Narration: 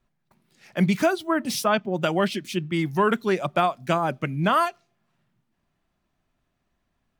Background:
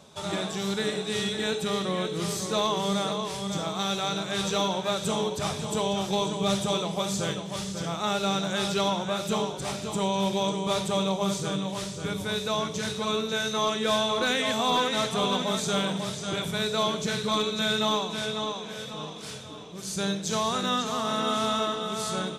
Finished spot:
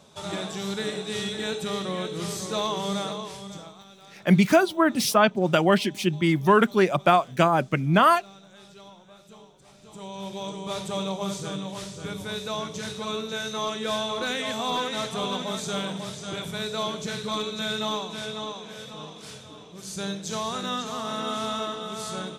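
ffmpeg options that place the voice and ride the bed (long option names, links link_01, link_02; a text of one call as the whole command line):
ffmpeg -i stem1.wav -i stem2.wav -filter_complex "[0:a]adelay=3500,volume=3dB[link_01];[1:a]volume=17.5dB,afade=type=out:start_time=2.98:duration=0.86:silence=0.0944061,afade=type=in:start_time=9.72:duration=1.3:silence=0.112202[link_02];[link_01][link_02]amix=inputs=2:normalize=0" out.wav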